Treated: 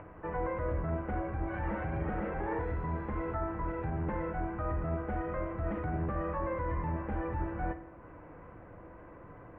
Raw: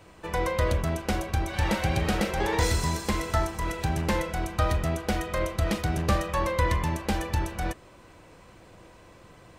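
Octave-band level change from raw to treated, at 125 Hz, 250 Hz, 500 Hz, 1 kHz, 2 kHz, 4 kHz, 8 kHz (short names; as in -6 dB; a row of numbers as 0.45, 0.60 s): -8.0 dB, -6.0 dB, -6.5 dB, -7.0 dB, -11.0 dB, under -30 dB, under -40 dB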